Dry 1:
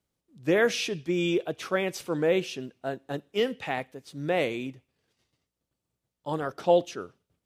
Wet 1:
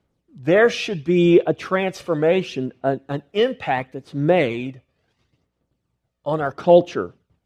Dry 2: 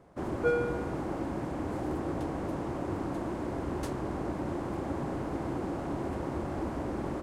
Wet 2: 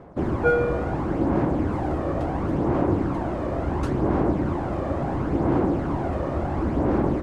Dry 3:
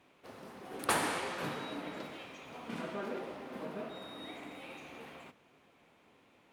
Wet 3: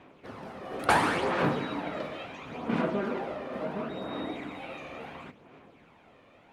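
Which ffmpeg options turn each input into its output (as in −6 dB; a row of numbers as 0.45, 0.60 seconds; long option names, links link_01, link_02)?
-af "aemphasis=mode=reproduction:type=75kf,aphaser=in_gain=1:out_gain=1:delay=1.7:decay=0.42:speed=0.72:type=sinusoidal,volume=8.5dB"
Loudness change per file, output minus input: +8.5, +9.5, +8.0 LU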